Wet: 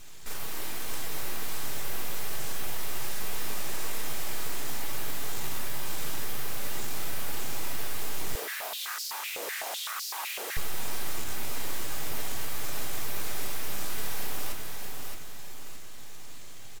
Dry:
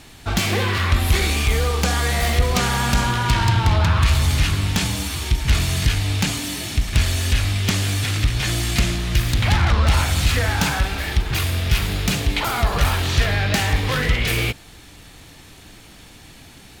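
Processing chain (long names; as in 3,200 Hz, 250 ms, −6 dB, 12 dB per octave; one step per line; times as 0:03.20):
downward compressor 3 to 1, threshold −21 dBFS, peak gain reduction 7.5 dB
wrap-around overflow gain 27 dB
low-pass with resonance 7,200 Hz, resonance Q 4.5
full-wave rectification
repeating echo 619 ms, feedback 40%, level −4.5 dB
convolution reverb RT60 0.85 s, pre-delay 3 ms, DRR 2 dB
0:08.35–0:10.57: high-pass on a step sequencer 7.9 Hz 470–4,800 Hz
level −8.5 dB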